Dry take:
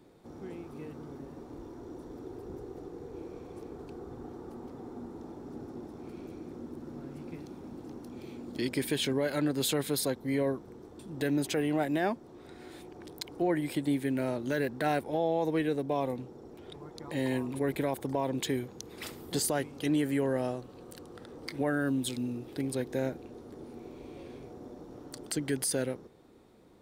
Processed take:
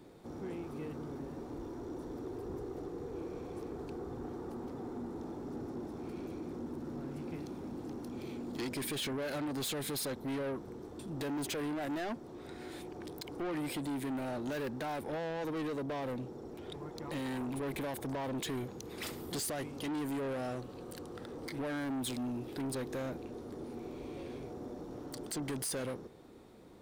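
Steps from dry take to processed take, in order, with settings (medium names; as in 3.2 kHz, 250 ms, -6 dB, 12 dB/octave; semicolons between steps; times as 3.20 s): peak limiter -23.5 dBFS, peak gain reduction 6 dB; saturation -37 dBFS, distortion -6 dB; trim +3 dB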